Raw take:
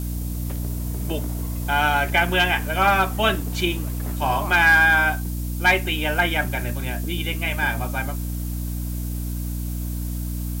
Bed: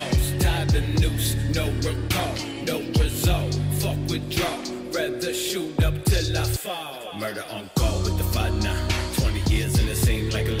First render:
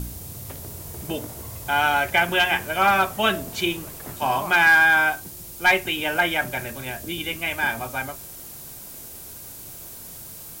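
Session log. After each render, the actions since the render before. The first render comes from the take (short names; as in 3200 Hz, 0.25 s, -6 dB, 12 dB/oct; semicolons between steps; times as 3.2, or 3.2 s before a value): de-hum 60 Hz, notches 11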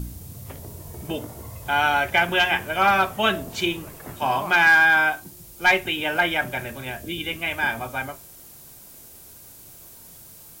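noise print and reduce 6 dB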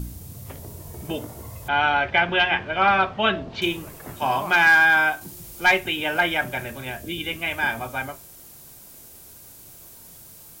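1.68–3.62 LPF 4200 Hz 24 dB/oct; 5.21–5.68 G.711 law mismatch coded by mu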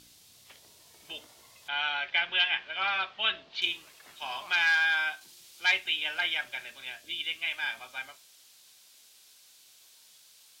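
octaver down 2 oct, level 0 dB; band-pass 3700 Hz, Q 1.5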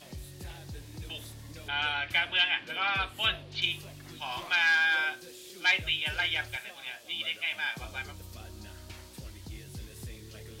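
add bed -22.5 dB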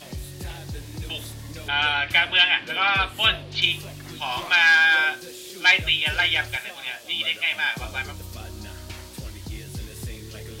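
gain +8.5 dB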